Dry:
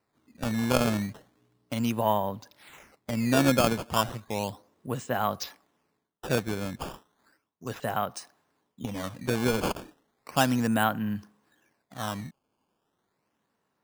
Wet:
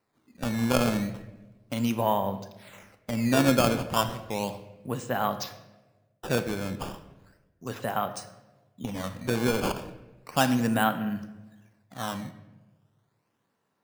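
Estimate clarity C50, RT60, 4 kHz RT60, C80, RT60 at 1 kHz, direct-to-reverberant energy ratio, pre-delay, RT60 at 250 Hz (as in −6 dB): 11.5 dB, 1.1 s, 0.75 s, 13.5 dB, 0.90 s, 9.0 dB, 4 ms, 1.2 s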